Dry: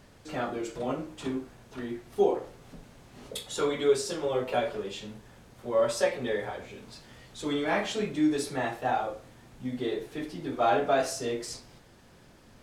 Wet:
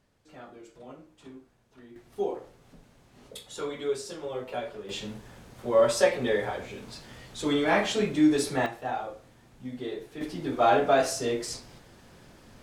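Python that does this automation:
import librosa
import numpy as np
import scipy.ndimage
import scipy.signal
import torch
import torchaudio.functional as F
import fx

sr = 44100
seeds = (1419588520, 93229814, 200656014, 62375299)

y = fx.gain(x, sr, db=fx.steps((0.0, -14.5), (1.96, -6.0), (4.89, 4.0), (8.66, -4.0), (10.21, 3.0)))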